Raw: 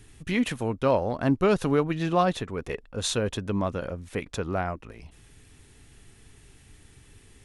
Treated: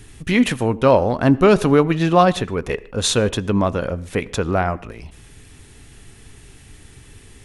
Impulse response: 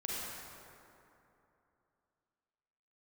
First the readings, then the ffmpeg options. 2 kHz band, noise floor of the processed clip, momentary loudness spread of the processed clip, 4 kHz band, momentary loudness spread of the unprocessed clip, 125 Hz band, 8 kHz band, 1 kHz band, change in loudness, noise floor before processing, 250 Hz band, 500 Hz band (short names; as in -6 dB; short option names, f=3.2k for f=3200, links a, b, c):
+9.0 dB, -45 dBFS, 11 LU, +9.0 dB, 11 LU, +9.0 dB, +9.0 dB, +9.0 dB, +9.0 dB, -55 dBFS, +9.0 dB, +9.0 dB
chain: -filter_complex "[0:a]asplit=2[a][b];[b]highshelf=f=5.9k:g=-12[c];[1:a]atrim=start_sample=2205,atrim=end_sample=6174,adelay=24[d];[c][d]afir=irnorm=-1:irlink=0,volume=-18dB[e];[a][e]amix=inputs=2:normalize=0,volume=9dB"